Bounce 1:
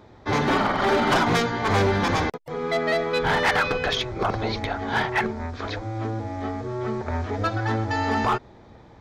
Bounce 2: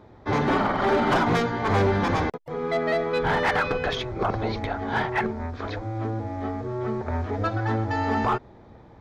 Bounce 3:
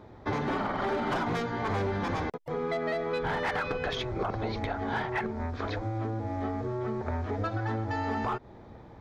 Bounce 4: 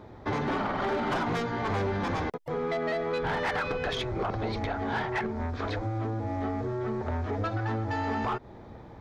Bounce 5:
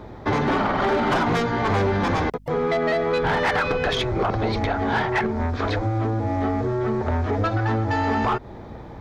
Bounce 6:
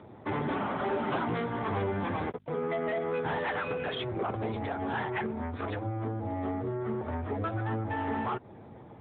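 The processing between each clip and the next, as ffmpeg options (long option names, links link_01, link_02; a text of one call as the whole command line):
ffmpeg -i in.wav -af "highshelf=frequency=2500:gain=-9" out.wav
ffmpeg -i in.wav -af "acompressor=threshold=-28dB:ratio=6" out.wav
ffmpeg -i in.wav -af "asoftclip=type=tanh:threshold=-25dB,volume=2.5dB" out.wav
ffmpeg -i in.wav -af "aeval=exprs='val(0)+0.00178*(sin(2*PI*50*n/s)+sin(2*PI*2*50*n/s)/2+sin(2*PI*3*50*n/s)/3+sin(2*PI*4*50*n/s)/4+sin(2*PI*5*50*n/s)/5)':channel_layout=same,volume=8dB" out.wav
ffmpeg -i in.wav -af "volume=-9dB" -ar 8000 -c:a libopencore_amrnb -b:a 10200 out.amr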